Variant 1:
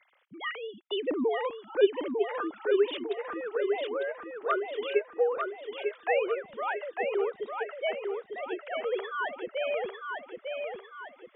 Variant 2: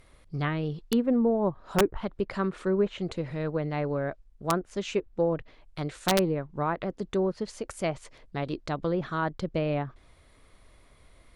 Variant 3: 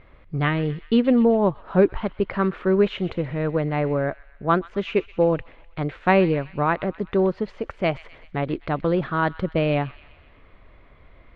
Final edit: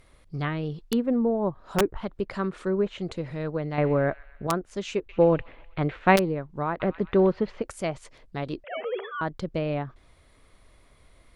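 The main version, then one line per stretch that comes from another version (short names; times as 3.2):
2
3.78–4.47 from 3
5.09–6.16 from 3
6.8–7.62 from 3
8.64–9.21 from 1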